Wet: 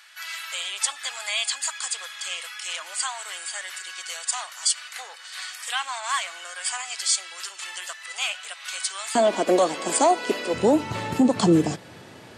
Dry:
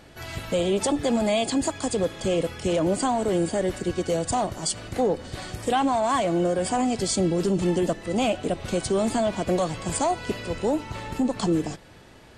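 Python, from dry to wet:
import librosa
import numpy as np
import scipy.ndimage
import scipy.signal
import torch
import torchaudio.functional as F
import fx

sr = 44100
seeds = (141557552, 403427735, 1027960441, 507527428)

y = fx.highpass(x, sr, hz=fx.steps((0.0, 1300.0), (9.15, 270.0), (10.54, 100.0)), slope=24)
y = y * 10.0 ** (5.5 / 20.0)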